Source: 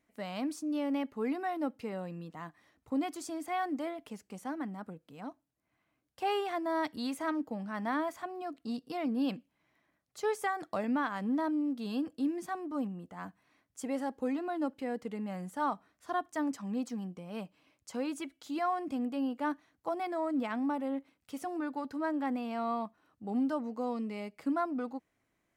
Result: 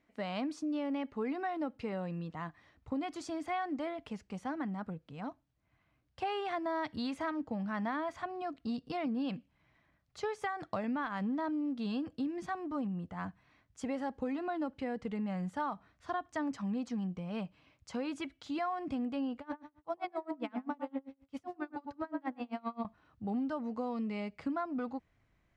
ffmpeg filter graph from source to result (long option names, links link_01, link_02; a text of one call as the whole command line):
ffmpeg -i in.wav -filter_complex "[0:a]asettb=1/sr,asplit=3[link_01][link_02][link_03];[link_01]atrim=end=19.394[link_04];[link_02]atrim=start=19.39:end=22.85,asetpts=PTS-STARTPTS,afade=type=in:duration=0.004:curve=qsin,afade=type=out:start_time=3.456:duration=0.004:curve=qsin,asplit=2[link_05][link_06];[link_06]adelay=103,lowpass=frequency=1100:poles=1,volume=-5dB,asplit=2[link_07][link_08];[link_08]adelay=103,lowpass=frequency=1100:poles=1,volume=0.25,asplit=2[link_09][link_10];[link_10]adelay=103,lowpass=frequency=1100:poles=1,volume=0.25[link_11];[link_05][link_07][link_09][link_11]amix=inputs=4:normalize=0,atrim=end_sample=152586,aeval=exprs='val(0)*pow(10,-32*(0.5-0.5*cos(2*PI*7.6*n/s))/20)':channel_layout=same[link_12];[link_03]atrim=start=22.846[link_13];[link_04][link_12]acrossfade=duration=0.004:curve1=hsin:curve2=qsin[link_14];[link_14][link_13]acrossfade=duration=0.004:curve1=qsin:curve2=hsin,asubboost=boost=4.5:cutoff=130,lowpass=4600,acompressor=threshold=-35dB:ratio=6,volume=3dB" out.wav